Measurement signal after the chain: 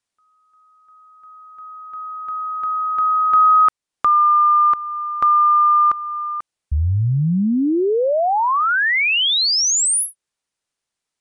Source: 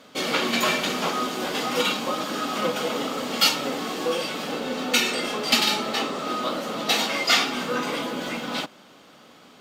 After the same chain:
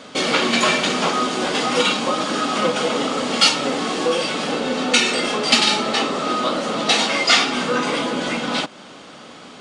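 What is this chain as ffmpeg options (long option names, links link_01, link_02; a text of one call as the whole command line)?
ffmpeg -i in.wav -filter_complex "[0:a]aresample=22050,aresample=44100,asplit=2[link_01][link_02];[link_02]acompressor=threshold=-35dB:ratio=6,volume=1.5dB[link_03];[link_01][link_03]amix=inputs=2:normalize=0,volume=3.5dB" out.wav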